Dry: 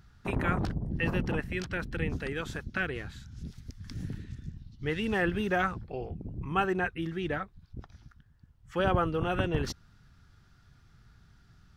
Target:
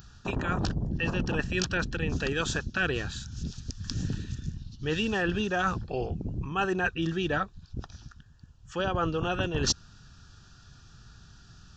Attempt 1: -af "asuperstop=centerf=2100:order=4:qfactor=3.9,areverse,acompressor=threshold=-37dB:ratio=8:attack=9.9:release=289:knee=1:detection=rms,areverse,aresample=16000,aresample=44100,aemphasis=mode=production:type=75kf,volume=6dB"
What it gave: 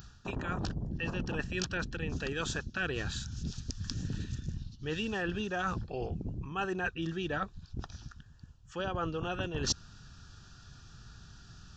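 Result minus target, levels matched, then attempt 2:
downward compressor: peak gain reduction +6 dB
-af "asuperstop=centerf=2100:order=4:qfactor=3.9,areverse,acompressor=threshold=-30dB:ratio=8:attack=9.9:release=289:knee=1:detection=rms,areverse,aresample=16000,aresample=44100,aemphasis=mode=production:type=75kf,volume=6dB"

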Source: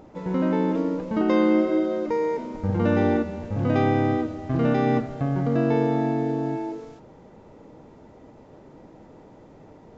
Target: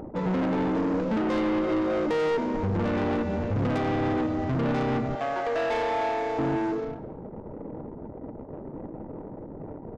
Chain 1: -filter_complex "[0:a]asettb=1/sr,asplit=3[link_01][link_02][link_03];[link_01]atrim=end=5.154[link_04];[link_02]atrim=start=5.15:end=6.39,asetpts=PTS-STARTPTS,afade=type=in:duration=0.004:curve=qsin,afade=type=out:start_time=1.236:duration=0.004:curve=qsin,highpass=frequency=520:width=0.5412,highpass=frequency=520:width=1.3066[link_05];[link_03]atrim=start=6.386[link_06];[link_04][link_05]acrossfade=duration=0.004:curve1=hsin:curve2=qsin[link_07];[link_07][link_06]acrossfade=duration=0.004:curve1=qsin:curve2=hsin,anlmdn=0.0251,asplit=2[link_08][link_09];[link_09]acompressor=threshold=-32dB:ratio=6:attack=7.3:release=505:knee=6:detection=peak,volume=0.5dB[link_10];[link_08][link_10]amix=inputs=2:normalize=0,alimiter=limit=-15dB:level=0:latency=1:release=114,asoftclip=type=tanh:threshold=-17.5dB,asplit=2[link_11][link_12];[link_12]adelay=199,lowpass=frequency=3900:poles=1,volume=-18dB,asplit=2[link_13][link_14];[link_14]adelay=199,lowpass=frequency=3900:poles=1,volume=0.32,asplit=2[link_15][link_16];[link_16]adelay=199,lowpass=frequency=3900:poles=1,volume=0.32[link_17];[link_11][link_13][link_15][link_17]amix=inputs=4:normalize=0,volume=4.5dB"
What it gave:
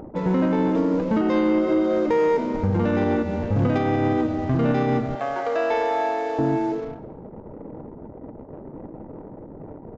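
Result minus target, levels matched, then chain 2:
soft clipping: distortion −11 dB
-filter_complex "[0:a]asettb=1/sr,asplit=3[link_01][link_02][link_03];[link_01]atrim=end=5.154[link_04];[link_02]atrim=start=5.15:end=6.39,asetpts=PTS-STARTPTS,afade=type=in:duration=0.004:curve=qsin,afade=type=out:start_time=1.236:duration=0.004:curve=qsin,highpass=frequency=520:width=0.5412,highpass=frequency=520:width=1.3066[link_05];[link_03]atrim=start=6.386[link_06];[link_04][link_05]acrossfade=duration=0.004:curve1=hsin:curve2=qsin[link_07];[link_07][link_06]acrossfade=duration=0.004:curve1=qsin:curve2=hsin,anlmdn=0.0251,asplit=2[link_08][link_09];[link_09]acompressor=threshold=-32dB:ratio=6:attack=7.3:release=505:knee=6:detection=peak,volume=0.5dB[link_10];[link_08][link_10]amix=inputs=2:normalize=0,alimiter=limit=-15dB:level=0:latency=1:release=114,asoftclip=type=tanh:threshold=-27.5dB,asplit=2[link_11][link_12];[link_12]adelay=199,lowpass=frequency=3900:poles=1,volume=-18dB,asplit=2[link_13][link_14];[link_14]adelay=199,lowpass=frequency=3900:poles=1,volume=0.32,asplit=2[link_15][link_16];[link_16]adelay=199,lowpass=frequency=3900:poles=1,volume=0.32[link_17];[link_11][link_13][link_15][link_17]amix=inputs=4:normalize=0,volume=4.5dB"

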